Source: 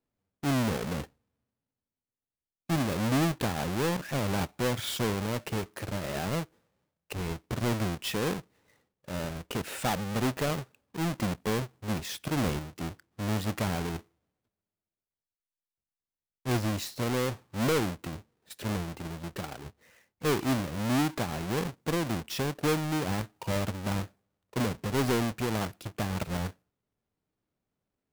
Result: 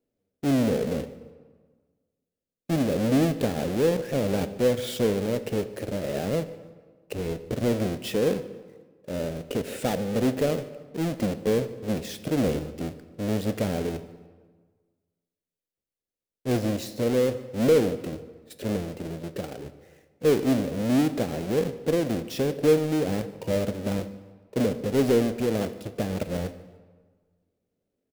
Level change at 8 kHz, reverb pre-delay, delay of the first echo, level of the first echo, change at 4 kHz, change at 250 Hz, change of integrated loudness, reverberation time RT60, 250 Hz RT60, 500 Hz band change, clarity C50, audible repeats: -1.0 dB, 9 ms, 0.148 s, -22.0 dB, -1.0 dB, +5.5 dB, +5.0 dB, 1.5 s, 1.5 s, +9.0 dB, 13.5 dB, 2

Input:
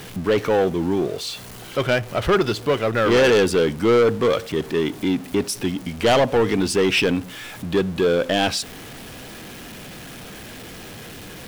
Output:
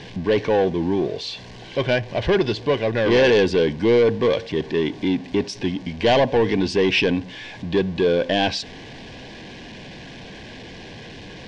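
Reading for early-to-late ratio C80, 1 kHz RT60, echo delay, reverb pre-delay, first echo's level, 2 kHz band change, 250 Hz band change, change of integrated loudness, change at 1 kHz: none, none, none, none, none, -0.5 dB, 0.0 dB, -0.5 dB, -2.0 dB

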